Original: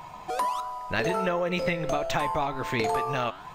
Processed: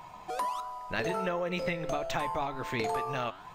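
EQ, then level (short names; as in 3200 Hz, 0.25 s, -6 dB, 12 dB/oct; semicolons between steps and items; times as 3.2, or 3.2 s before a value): notches 50/100/150 Hz; -5.0 dB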